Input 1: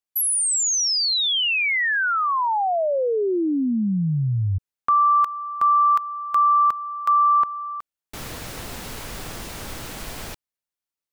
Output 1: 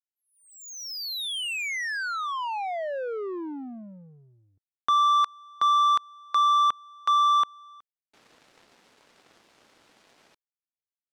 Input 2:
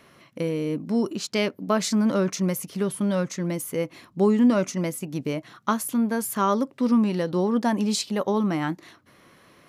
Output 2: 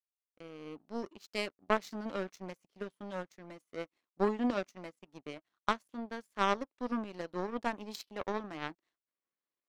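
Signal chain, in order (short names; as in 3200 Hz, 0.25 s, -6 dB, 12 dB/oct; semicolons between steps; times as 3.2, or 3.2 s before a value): opening faded in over 0.68 s; BPF 270–5300 Hz; power-law curve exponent 2; gain -1.5 dB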